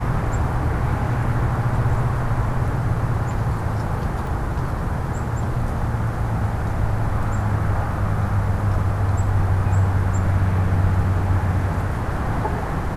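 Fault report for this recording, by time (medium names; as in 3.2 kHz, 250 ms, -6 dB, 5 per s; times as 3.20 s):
4.27 s: dropout 2.3 ms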